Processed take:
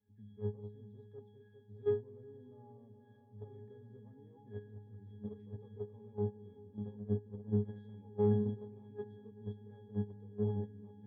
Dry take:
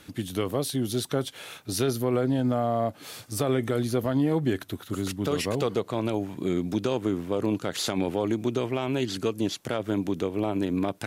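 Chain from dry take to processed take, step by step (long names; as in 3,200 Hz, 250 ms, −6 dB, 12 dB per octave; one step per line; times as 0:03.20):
parametric band 4,300 Hz −3 dB 2.6 octaves
resonances in every octave G#, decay 0.62 s
echo whose low-pass opens from repeat to repeat 201 ms, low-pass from 400 Hz, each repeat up 2 octaves, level −6 dB
in parallel at −8 dB: soft clipping −37 dBFS, distortion −12 dB
on the sum: noise gate −35 dBFS, range −16 dB
head-to-tape spacing loss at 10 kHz 22 dB
level +5 dB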